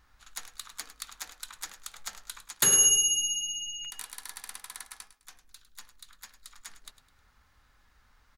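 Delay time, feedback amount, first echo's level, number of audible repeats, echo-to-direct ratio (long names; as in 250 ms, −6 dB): 104 ms, 36%, −14.0 dB, 3, −13.5 dB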